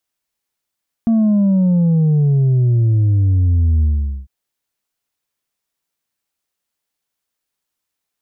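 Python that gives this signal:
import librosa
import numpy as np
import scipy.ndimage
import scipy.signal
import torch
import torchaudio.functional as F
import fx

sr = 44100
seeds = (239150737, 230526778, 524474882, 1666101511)

y = fx.sub_drop(sr, level_db=-11.0, start_hz=230.0, length_s=3.2, drive_db=3.0, fade_s=0.44, end_hz=65.0)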